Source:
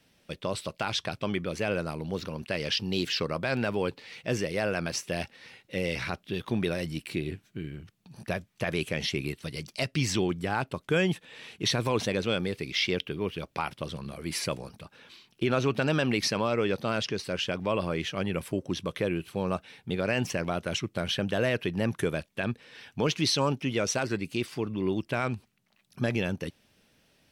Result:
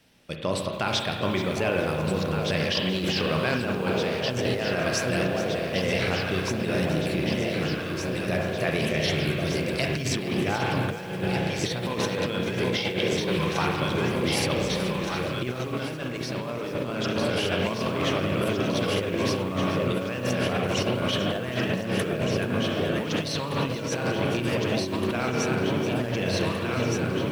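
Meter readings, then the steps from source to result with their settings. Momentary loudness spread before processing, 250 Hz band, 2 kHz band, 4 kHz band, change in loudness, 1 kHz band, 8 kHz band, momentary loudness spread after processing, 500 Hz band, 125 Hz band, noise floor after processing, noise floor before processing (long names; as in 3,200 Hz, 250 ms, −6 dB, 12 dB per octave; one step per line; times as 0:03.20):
10 LU, +4.5 dB, +4.0 dB, +3.0 dB, +4.0 dB, +5.0 dB, +2.0 dB, 4 LU, +4.5 dB, +5.0 dB, −32 dBFS, −68 dBFS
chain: on a send: delay that swaps between a low-pass and a high-pass 759 ms, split 840 Hz, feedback 86%, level −5.5 dB
on the sum: spring reverb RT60 1.9 s, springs 32/50 ms, chirp 40 ms, DRR 1.5 dB
compressor whose output falls as the input rises −27 dBFS, ratio −0.5
feedback echo at a low word length 430 ms, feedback 35%, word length 7 bits, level −12 dB
level +1.5 dB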